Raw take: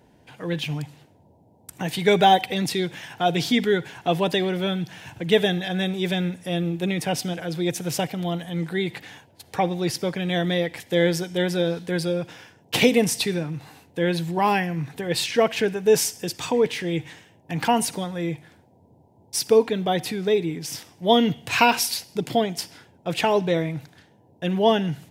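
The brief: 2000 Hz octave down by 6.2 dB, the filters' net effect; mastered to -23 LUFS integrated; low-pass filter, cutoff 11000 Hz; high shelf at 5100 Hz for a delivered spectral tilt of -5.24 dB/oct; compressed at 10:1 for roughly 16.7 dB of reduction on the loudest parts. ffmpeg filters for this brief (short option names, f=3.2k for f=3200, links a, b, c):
-af "lowpass=11k,equalizer=f=2k:t=o:g=-7,highshelf=f=5.1k:g=-6.5,acompressor=threshold=-30dB:ratio=10,volume=12dB"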